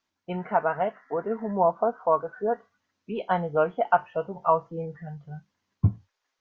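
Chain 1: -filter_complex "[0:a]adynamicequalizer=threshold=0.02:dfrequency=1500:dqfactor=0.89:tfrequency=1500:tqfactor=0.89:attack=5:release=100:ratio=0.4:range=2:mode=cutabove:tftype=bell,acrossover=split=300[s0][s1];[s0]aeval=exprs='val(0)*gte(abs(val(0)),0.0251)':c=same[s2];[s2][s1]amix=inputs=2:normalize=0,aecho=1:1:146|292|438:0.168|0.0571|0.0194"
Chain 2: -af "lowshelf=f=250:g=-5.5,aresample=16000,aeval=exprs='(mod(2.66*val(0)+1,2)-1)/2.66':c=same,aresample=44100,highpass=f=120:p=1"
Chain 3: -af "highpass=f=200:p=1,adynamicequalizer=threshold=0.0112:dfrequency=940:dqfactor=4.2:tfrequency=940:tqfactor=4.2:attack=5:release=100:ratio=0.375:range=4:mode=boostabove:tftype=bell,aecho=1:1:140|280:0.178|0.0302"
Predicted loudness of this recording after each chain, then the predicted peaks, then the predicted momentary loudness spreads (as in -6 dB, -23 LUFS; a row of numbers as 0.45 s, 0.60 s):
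-27.5 LUFS, -28.0 LUFS, -25.0 LUFS; -7.0 dBFS, -5.0 dBFS, -3.0 dBFS; 13 LU, 14 LU, 16 LU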